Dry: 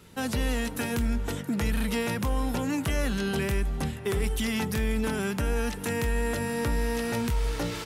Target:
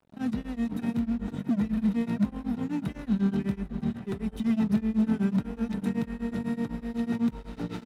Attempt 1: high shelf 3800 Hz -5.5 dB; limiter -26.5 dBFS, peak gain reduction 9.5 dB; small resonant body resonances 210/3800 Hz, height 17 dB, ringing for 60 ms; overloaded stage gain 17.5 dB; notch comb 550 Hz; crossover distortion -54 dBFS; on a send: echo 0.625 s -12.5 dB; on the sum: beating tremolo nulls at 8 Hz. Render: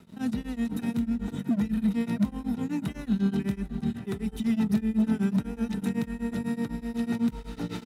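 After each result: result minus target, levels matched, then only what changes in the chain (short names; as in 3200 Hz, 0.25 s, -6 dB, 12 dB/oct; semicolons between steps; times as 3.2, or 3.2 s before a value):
crossover distortion: distortion -11 dB; 8000 Hz band +5.5 dB
change: crossover distortion -42.5 dBFS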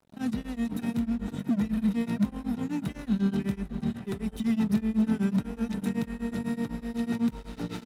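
8000 Hz band +6.0 dB
change: high shelf 3800 Hz -14.5 dB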